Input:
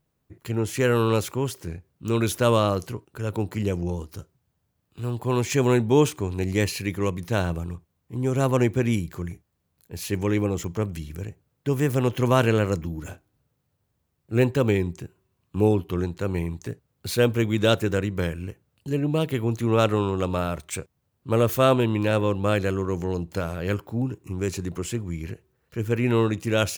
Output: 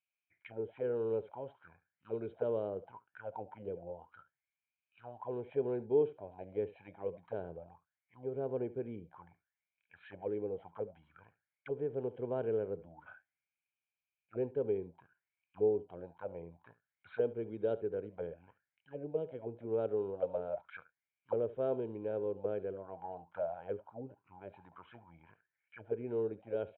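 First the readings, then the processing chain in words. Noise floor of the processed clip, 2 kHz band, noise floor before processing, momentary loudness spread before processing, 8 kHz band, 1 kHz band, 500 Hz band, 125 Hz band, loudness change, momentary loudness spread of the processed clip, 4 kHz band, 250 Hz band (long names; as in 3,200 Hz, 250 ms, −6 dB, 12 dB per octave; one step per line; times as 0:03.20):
below −85 dBFS, −24.0 dB, −75 dBFS, 16 LU, below −40 dB, −18.5 dB, −10.5 dB, −25.5 dB, −14.0 dB, 18 LU, below −30 dB, −19.5 dB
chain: comb filter 1.3 ms, depth 58%
on a send: single-tap delay 71 ms −18 dB
on the sum: downsampling to 8,000 Hz
low-shelf EQ 60 Hz +7 dB
envelope filter 420–2,500 Hz, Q 8.9, down, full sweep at −18.5 dBFS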